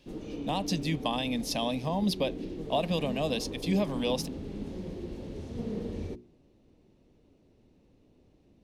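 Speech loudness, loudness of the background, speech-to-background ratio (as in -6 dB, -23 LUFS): -31.5 LUFS, -39.0 LUFS, 7.5 dB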